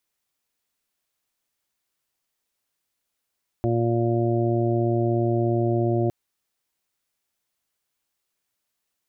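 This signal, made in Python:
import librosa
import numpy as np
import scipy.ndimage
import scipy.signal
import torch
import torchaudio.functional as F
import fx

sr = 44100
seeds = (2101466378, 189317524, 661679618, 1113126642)

y = fx.additive_steady(sr, length_s=2.46, hz=117.0, level_db=-23.0, upper_db=(-6.0, 0, -17.0, -7.0, -8))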